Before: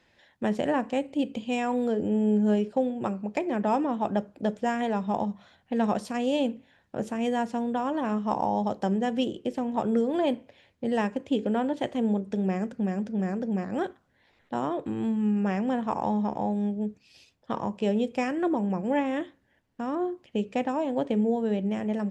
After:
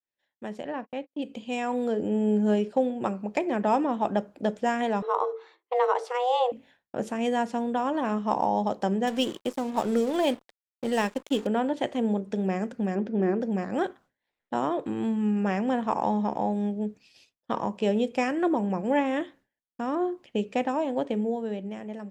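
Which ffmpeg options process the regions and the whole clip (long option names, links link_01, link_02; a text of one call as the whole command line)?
ffmpeg -i in.wav -filter_complex "[0:a]asettb=1/sr,asplit=3[link_01][link_02][link_03];[link_01]atrim=end=0.634[link_04];[link_02]atrim=start=0.63:end=1.22,asetpts=PTS-STARTPTS,afade=type=in:duration=0.004:curve=qsin,afade=type=out:start_time=0.586:duration=0.004:curve=qsin,lowpass=frequency=5100:width=0.5412,lowpass=frequency=5100:width=1.3066,agate=range=-44dB:threshold=-35dB:ratio=16:release=100:detection=peak[link_05];[link_03]atrim=start=1.216[link_06];[link_04][link_05]acrossfade=duration=0.004:curve1=hsin:curve2=qsin[link_07];[link_07][link_06]acrossfade=duration=0.004:curve1=qsin:curve2=hsin,asettb=1/sr,asplit=3[link_08][link_09][link_10];[link_08]atrim=end=5.024[link_11];[link_09]atrim=start=5.02:end=6.52,asetpts=PTS-STARTPTS,afade=type=in:duration=0.004:curve=qsin,afade=type=out:start_time=1.496:duration=0.004:curve=qsin,bandreject=frequency=50:width_type=h:width=6,bandreject=frequency=100:width_type=h:width=6,bandreject=frequency=150:width_type=h:width=6,bandreject=frequency=200:width_type=h:width=6,bandreject=frequency=250:width_type=h:width=6,bandreject=frequency=300:width_type=h:width=6,bandreject=frequency=350:width_type=h:width=6,afreqshift=250,aemphasis=mode=reproduction:type=50fm[link_12];[link_10]atrim=start=6.516[link_13];[link_11][link_12]acrossfade=duration=0.004:curve1=hsin:curve2=qsin[link_14];[link_14][link_13]acrossfade=duration=0.004:curve1=qsin:curve2=hsin,asettb=1/sr,asplit=3[link_15][link_16][link_17];[link_15]atrim=end=9.074[link_18];[link_16]atrim=start=9.07:end=11.47,asetpts=PTS-STARTPTS,afade=type=in:duration=0.004:curve=qsin,afade=type=out:start_time=2.396:duration=0.004:curve=qsin,aeval=exprs='sgn(val(0))*max(abs(val(0))-0.00562,0)':channel_layout=same,highshelf=frequency=4300:gain=11[link_19];[link_17]atrim=start=11.466[link_20];[link_18][link_19]acrossfade=duration=0.004:curve1=hsin:curve2=qsin[link_21];[link_21][link_20]acrossfade=duration=0.004:curve1=qsin:curve2=hsin,asettb=1/sr,asplit=3[link_22][link_23][link_24];[link_22]atrim=end=12.954[link_25];[link_23]atrim=start=12.95:end=13.41,asetpts=PTS-STARTPTS,afade=type=in:duration=0.004:curve=qsin,afade=type=out:start_time=0.456:duration=0.004:curve=qsin,lowpass=3300,equalizer=frequency=350:width=3.2:gain=12.5[link_26];[link_24]atrim=start=13.406[link_27];[link_25][link_26]acrossfade=duration=0.004:curve1=hsin:curve2=qsin[link_28];[link_28][link_27]acrossfade=duration=0.004:curve1=qsin:curve2=hsin,agate=range=-33dB:threshold=-50dB:ratio=3:detection=peak,equalizer=frequency=66:width_type=o:width=2.7:gain=-8.5,dynaudnorm=framelen=340:gausssize=9:maxgain=11.5dB,volume=-8dB" out.wav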